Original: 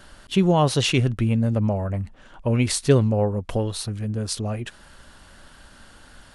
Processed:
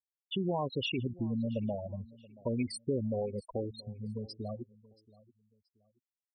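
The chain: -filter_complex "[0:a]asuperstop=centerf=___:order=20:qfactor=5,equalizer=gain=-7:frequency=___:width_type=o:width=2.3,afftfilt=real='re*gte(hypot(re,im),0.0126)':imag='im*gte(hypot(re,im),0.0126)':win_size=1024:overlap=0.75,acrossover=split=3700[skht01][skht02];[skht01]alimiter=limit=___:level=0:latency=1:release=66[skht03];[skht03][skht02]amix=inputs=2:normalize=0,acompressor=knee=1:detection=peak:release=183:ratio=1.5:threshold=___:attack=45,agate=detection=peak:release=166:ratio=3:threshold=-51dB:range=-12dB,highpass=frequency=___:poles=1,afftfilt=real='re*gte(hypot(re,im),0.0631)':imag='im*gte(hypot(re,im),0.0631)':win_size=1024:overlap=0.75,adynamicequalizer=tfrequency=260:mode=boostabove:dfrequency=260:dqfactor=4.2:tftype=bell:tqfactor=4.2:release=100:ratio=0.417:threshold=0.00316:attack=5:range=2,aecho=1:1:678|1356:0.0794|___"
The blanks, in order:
1500, 100, -15.5dB, -47dB, 75, 0.023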